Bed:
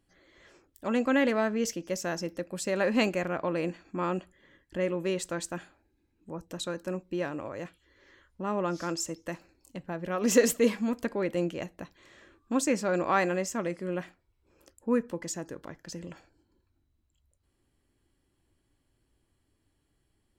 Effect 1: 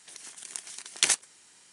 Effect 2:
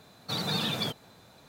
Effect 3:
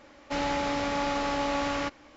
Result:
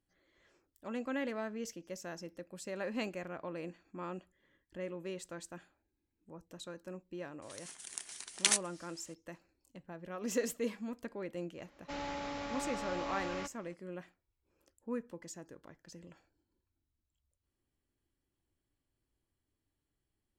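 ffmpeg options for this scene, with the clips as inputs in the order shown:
ffmpeg -i bed.wav -i cue0.wav -i cue1.wav -i cue2.wav -filter_complex "[0:a]volume=-12dB[link_01];[1:a]atrim=end=1.72,asetpts=PTS-STARTPTS,volume=-5dB,afade=type=in:duration=0.004:curve=hsin,afade=type=out:start_time=1.716:duration=0.004:curve=hsin,adelay=7420[link_02];[3:a]atrim=end=2.16,asetpts=PTS-STARTPTS,volume=-11.5dB,afade=type=in:duration=0.004:curve=hsin,afade=type=out:start_time=2.156:duration=0.004:curve=hsin,adelay=11580[link_03];[link_01][link_02][link_03]amix=inputs=3:normalize=0" out.wav

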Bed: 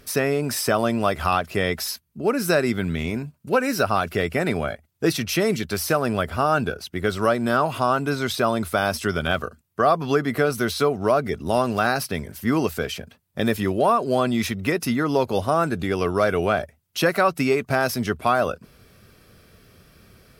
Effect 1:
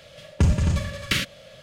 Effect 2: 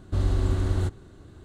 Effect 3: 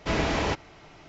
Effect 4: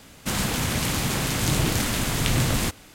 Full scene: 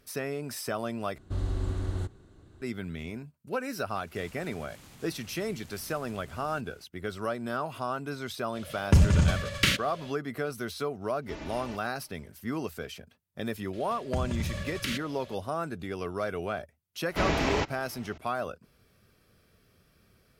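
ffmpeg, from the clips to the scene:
ffmpeg -i bed.wav -i cue0.wav -i cue1.wav -i cue2.wav -i cue3.wav -filter_complex "[1:a]asplit=2[link_01][link_02];[3:a]asplit=2[link_03][link_04];[0:a]volume=-12dB[link_05];[4:a]acompressor=threshold=-36dB:ratio=6:attack=3.2:release=140:knee=1:detection=peak[link_06];[link_03]aecho=1:1:3.4:0.65[link_07];[link_02]acompressor=threshold=-24dB:ratio=6:attack=3.2:release=140:knee=1:detection=peak[link_08];[link_05]asplit=2[link_09][link_10];[link_09]atrim=end=1.184[link_11];[2:a]atrim=end=1.44,asetpts=PTS-STARTPTS,volume=-7dB[link_12];[link_10]atrim=start=2.616[link_13];[link_06]atrim=end=2.94,asetpts=PTS-STARTPTS,volume=-13.5dB,afade=type=in:duration=0.004:curve=hsin,afade=type=out:start_time=2.936:duration=0.004:curve=hsin,adelay=3900[link_14];[link_01]atrim=end=1.62,asetpts=PTS-STARTPTS,volume=-0.5dB,afade=type=in:duration=0.05,afade=type=out:start_time=1.57:duration=0.05,adelay=8520[link_15];[link_07]atrim=end=1.08,asetpts=PTS-STARTPTS,volume=-18dB,afade=type=in:duration=0.004:curve=hsin,afade=type=out:start_time=1.076:duration=0.004:curve=hsin,adelay=494802S[link_16];[link_08]atrim=end=1.62,asetpts=PTS-STARTPTS,volume=-4dB,afade=type=in:duration=0.004:curve=hsin,afade=type=out:start_time=1.616:duration=0.004:curve=hsin,adelay=13730[link_17];[link_04]atrim=end=1.08,asetpts=PTS-STARTPTS,volume=-1.5dB,afade=type=in:duration=0.004:curve=hsin,afade=type=out:start_time=1.076:duration=0.004:curve=hsin,adelay=17100[link_18];[link_11][link_12]acrossfade=duration=0.004:curve1=hsin:curve2=hsin[link_19];[link_19][link_13]acrossfade=duration=0.004:curve1=hsin:curve2=hsin[link_20];[link_20][link_14][link_15][link_16][link_17][link_18]amix=inputs=6:normalize=0" out.wav

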